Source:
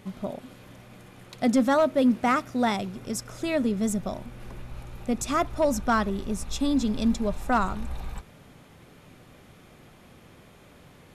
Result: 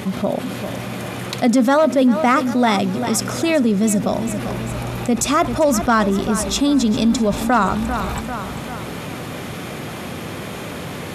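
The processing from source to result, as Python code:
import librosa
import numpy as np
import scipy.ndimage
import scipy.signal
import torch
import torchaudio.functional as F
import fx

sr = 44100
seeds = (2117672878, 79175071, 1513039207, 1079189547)

y = scipy.signal.sosfilt(scipy.signal.butter(2, 98.0, 'highpass', fs=sr, output='sos'), x)
y = fx.echo_feedback(y, sr, ms=394, feedback_pct=39, wet_db=-15.0)
y = fx.env_flatten(y, sr, amount_pct=50)
y = F.gain(torch.from_numpy(y), 5.5).numpy()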